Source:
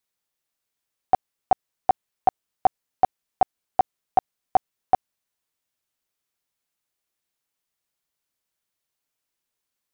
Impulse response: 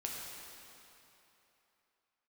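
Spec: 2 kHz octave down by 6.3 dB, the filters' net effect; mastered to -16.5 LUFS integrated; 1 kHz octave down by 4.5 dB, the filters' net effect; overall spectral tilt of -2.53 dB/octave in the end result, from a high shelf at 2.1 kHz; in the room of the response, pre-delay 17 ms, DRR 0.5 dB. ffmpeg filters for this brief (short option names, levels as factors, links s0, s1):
-filter_complex "[0:a]equalizer=f=1000:t=o:g=-6,equalizer=f=2000:t=o:g=-3.5,highshelf=f=2100:g=-4.5,asplit=2[s0][s1];[1:a]atrim=start_sample=2205,adelay=17[s2];[s1][s2]afir=irnorm=-1:irlink=0,volume=0.841[s3];[s0][s3]amix=inputs=2:normalize=0,volume=3.76"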